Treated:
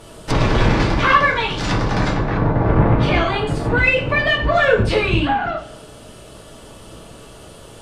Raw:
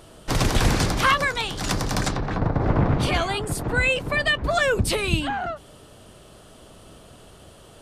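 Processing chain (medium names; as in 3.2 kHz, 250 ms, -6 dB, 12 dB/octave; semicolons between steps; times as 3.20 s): saturation -14.5 dBFS, distortion -17 dB; two-slope reverb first 0.41 s, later 1.6 s, from -24 dB, DRR -2.5 dB; low-pass that closes with the level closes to 3 kHz, closed at -18.5 dBFS; trim +3.5 dB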